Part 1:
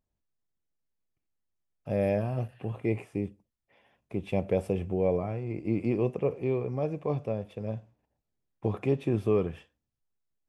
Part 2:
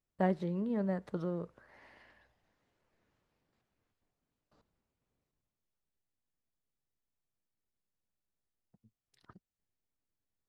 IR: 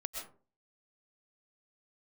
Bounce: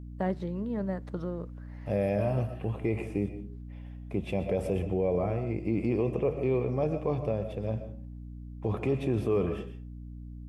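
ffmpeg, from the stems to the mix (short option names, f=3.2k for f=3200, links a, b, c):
-filter_complex "[0:a]bandreject=f=71.04:t=h:w=4,bandreject=f=142.08:t=h:w=4,bandreject=f=213.12:t=h:w=4,volume=-1.5dB,asplit=2[a][b];[b]volume=-3dB[c];[1:a]aeval=exprs='val(0)+0.00251*(sin(2*PI*60*n/s)+sin(2*PI*2*60*n/s)/2+sin(2*PI*3*60*n/s)/3+sin(2*PI*4*60*n/s)/4+sin(2*PI*5*60*n/s)/5)':c=same,volume=1dB[d];[2:a]atrim=start_sample=2205[e];[c][e]afir=irnorm=-1:irlink=0[f];[a][d][f]amix=inputs=3:normalize=0,aeval=exprs='val(0)+0.00631*(sin(2*PI*60*n/s)+sin(2*PI*2*60*n/s)/2+sin(2*PI*3*60*n/s)/3+sin(2*PI*4*60*n/s)/4+sin(2*PI*5*60*n/s)/5)':c=same,alimiter=limit=-18.5dB:level=0:latency=1:release=18"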